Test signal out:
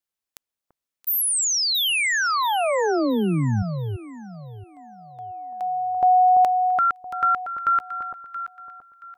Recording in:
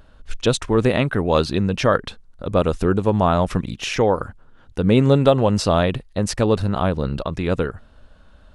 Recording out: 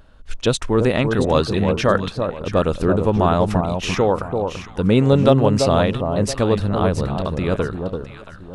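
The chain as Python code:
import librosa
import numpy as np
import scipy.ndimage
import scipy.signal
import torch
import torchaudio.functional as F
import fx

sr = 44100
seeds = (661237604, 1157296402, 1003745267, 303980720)

y = fx.echo_alternate(x, sr, ms=338, hz=1100.0, feedback_pct=53, wet_db=-5.0)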